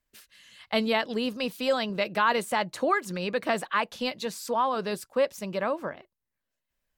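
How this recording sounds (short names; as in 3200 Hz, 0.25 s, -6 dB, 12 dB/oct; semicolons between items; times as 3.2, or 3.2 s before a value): noise floor -85 dBFS; spectral tilt -4.0 dB/oct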